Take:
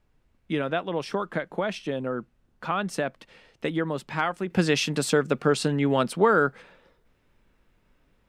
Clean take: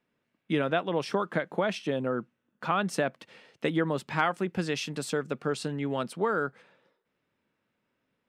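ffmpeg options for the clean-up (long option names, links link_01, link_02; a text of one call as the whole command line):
ffmpeg -i in.wav -af "agate=range=-21dB:threshold=-58dB,asetnsamples=nb_out_samples=441:pad=0,asendcmd='4.5 volume volume -8dB',volume=0dB" out.wav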